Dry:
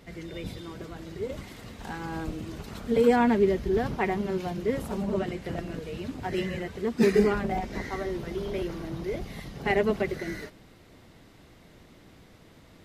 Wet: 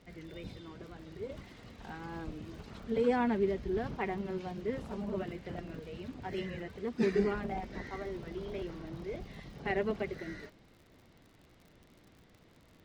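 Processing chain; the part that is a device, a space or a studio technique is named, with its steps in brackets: lo-fi chain (LPF 5500 Hz 12 dB/oct; wow and flutter; crackle 68/s -42 dBFS); gain -8 dB

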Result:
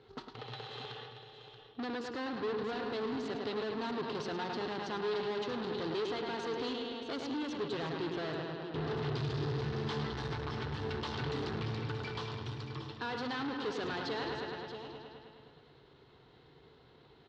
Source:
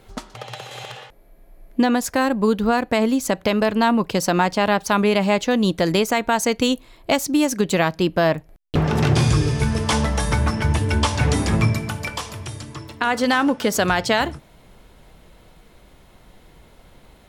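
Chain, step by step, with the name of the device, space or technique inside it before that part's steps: bell 430 Hz +6 dB 0.23 oct; analogue delay pedal into a guitar amplifier (analogue delay 0.105 s, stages 4096, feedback 68%, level -9.5 dB; tube stage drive 27 dB, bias 0.55; speaker cabinet 110–4300 Hz, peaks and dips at 140 Hz +7 dB, 190 Hz -10 dB, 410 Hz +4 dB, 600 Hz -9 dB, 2300 Hz -6 dB, 4100 Hz +5 dB); echo 0.63 s -10.5 dB; gain -7 dB

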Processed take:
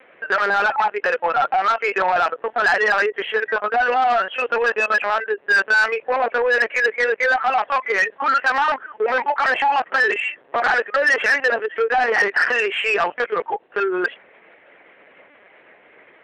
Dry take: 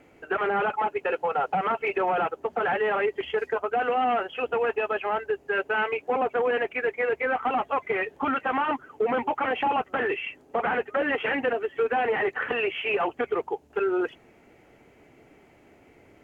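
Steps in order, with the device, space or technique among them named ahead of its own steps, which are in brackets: talking toy (LPC vocoder at 8 kHz pitch kept; HPF 460 Hz 12 dB/oct; bell 1700 Hz +8.5 dB 0.58 oct; soft clip -19 dBFS, distortion -15 dB); gain +8.5 dB

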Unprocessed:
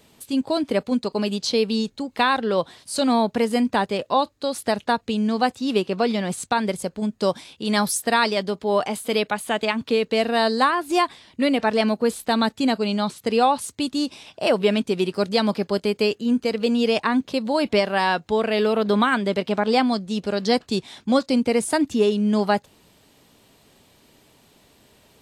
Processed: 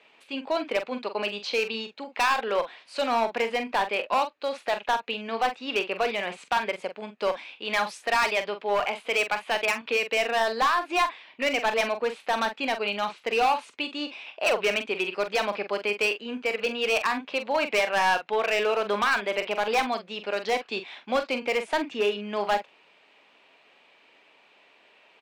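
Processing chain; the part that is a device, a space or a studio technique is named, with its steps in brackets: megaphone (BPF 580–2600 Hz; bell 2500 Hz +10 dB 0.54 oct; hard clip -18.5 dBFS, distortion -10 dB; doubler 44 ms -9.5 dB)

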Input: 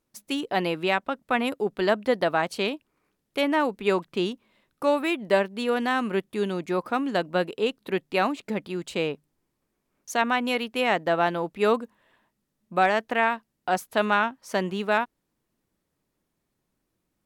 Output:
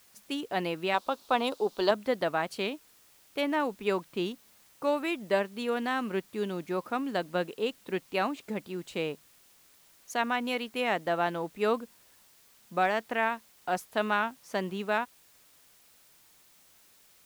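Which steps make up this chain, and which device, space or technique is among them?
plain cassette with noise reduction switched in (mismatched tape noise reduction decoder only; wow and flutter 23 cents; white noise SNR 28 dB); 0.94–1.91 graphic EQ 125/500/1000/2000/4000 Hz -10/+4/+7/-8/+11 dB; gain -5.5 dB

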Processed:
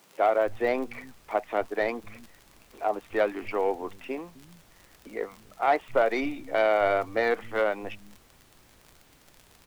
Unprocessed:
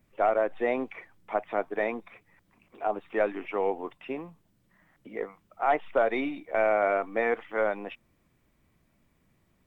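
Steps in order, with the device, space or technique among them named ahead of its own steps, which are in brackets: record under a worn stylus (tracing distortion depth 0.059 ms; crackle 38/s -38 dBFS; pink noise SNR 29 dB); bands offset in time highs, lows 0.26 s, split 170 Hz; gain +1.5 dB

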